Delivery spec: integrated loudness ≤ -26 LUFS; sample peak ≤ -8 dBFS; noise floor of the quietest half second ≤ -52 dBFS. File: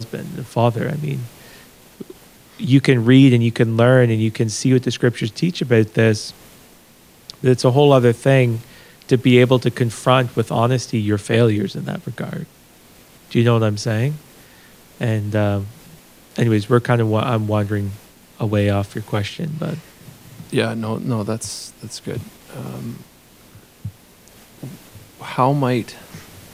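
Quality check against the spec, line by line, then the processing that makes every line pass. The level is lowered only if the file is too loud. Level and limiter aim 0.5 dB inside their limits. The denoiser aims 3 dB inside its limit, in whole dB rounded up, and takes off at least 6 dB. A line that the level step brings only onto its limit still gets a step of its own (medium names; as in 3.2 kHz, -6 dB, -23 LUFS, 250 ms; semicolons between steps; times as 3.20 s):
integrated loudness -18.0 LUFS: fail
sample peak -1.5 dBFS: fail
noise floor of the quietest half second -49 dBFS: fail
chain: trim -8.5 dB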